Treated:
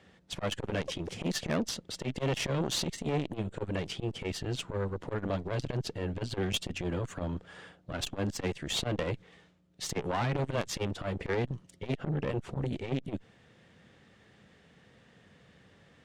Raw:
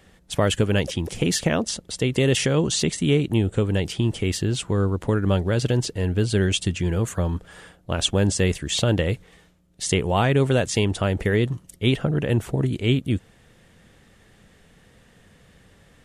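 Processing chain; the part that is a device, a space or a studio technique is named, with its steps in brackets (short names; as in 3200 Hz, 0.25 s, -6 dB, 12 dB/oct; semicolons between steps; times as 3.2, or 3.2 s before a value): valve radio (BPF 95–5300 Hz; tube stage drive 22 dB, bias 0.75; core saturation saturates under 320 Hz)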